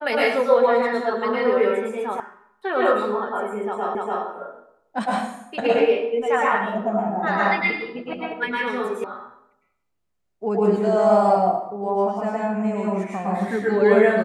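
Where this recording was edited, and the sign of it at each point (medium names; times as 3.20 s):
2.20 s: sound stops dead
3.95 s: repeat of the last 0.29 s
9.04 s: sound stops dead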